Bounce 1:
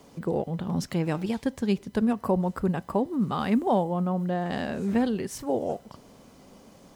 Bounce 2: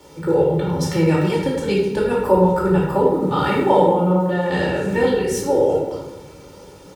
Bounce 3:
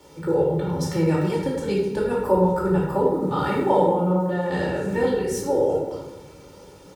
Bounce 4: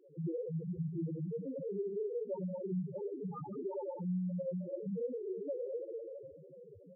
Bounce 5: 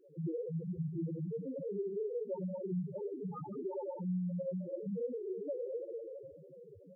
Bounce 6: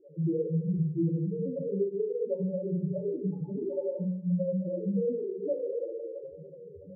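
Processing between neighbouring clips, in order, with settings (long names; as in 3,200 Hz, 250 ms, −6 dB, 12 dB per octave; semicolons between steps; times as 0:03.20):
high-pass filter 53 Hz; comb filter 2.2 ms, depth 93%; rectangular room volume 440 cubic metres, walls mixed, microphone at 2.5 metres; level +2 dB
dynamic equaliser 2,800 Hz, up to −5 dB, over −40 dBFS, Q 1.3; level −4 dB
downward compressor 12 to 1, threshold −29 dBFS, peak gain reduction 16 dB; four-comb reverb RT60 3 s, combs from 33 ms, DRR 9 dB; spectral peaks only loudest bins 2; level −1.5 dB
tape wow and flutter 28 cents
expanding power law on the bin magnitudes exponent 1.6; elliptic low-pass filter 640 Hz, stop band 50 dB; coupled-rooms reverb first 0.5 s, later 1.5 s, DRR −0.5 dB; level +5.5 dB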